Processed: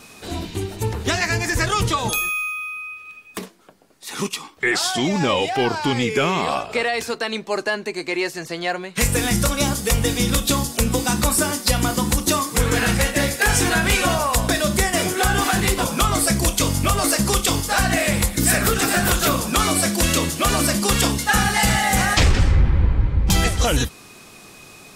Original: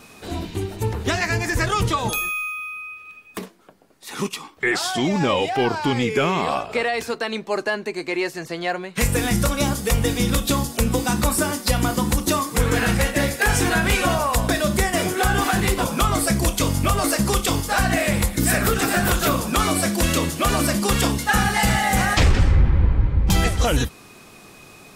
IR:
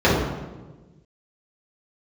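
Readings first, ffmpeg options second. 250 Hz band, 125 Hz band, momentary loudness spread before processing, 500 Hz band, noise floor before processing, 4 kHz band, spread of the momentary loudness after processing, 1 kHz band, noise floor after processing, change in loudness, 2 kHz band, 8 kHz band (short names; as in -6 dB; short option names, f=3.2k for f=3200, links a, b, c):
0.0 dB, 0.0 dB, 8 LU, 0.0 dB, -46 dBFS, +3.5 dB, 9 LU, +0.5 dB, -44 dBFS, +1.5 dB, +1.5 dB, +4.0 dB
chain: -af "equalizer=f=6.8k:w=0.41:g=4.5"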